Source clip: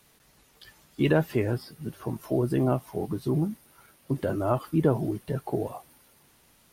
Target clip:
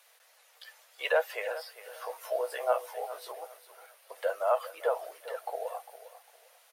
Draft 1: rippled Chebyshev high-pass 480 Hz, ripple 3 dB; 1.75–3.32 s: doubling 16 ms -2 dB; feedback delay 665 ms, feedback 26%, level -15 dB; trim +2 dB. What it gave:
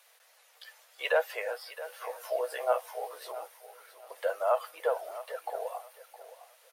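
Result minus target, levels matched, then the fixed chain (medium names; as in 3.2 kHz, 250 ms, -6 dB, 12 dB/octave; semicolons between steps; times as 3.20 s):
echo 263 ms late
rippled Chebyshev high-pass 480 Hz, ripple 3 dB; 1.75–3.32 s: doubling 16 ms -2 dB; feedback delay 402 ms, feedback 26%, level -15 dB; trim +2 dB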